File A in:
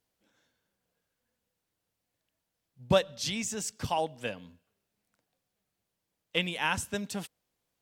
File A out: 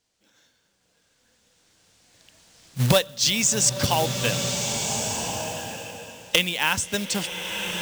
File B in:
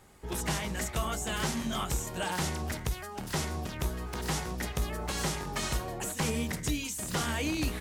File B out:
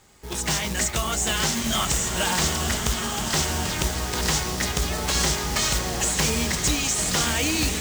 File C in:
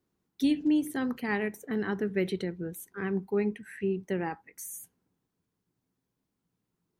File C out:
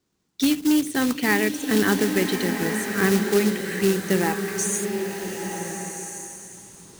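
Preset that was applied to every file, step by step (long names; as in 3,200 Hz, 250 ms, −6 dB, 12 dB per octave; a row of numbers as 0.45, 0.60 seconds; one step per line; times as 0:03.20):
camcorder AGC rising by 8.9 dB per second
low-pass filter 8,000 Hz 24 dB per octave
hard clipping −13.5 dBFS
floating-point word with a short mantissa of 2 bits
high-shelf EQ 3,000 Hz +10.5 dB
slow-attack reverb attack 1,450 ms, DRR 4 dB
loudness normalisation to −23 LKFS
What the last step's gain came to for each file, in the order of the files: +3.5, −0.5, +3.0 decibels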